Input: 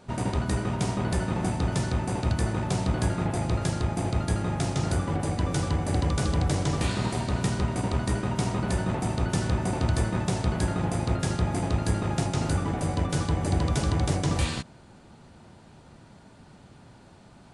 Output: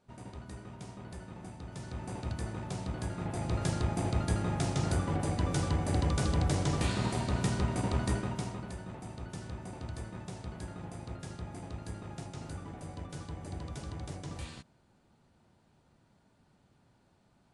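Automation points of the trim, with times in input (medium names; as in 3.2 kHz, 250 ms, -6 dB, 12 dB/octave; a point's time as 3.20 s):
1.66 s -18.5 dB
2.09 s -11 dB
3.09 s -11 dB
3.69 s -4 dB
8.12 s -4 dB
8.76 s -16 dB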